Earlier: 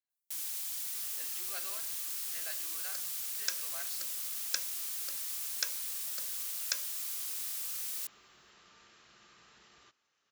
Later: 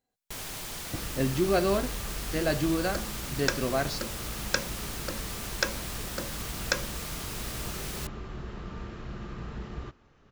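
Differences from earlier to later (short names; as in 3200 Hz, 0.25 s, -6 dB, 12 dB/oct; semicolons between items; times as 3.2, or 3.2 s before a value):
speech: remove band-pass 1500 Hz, Q 0.75; master: remove differentiator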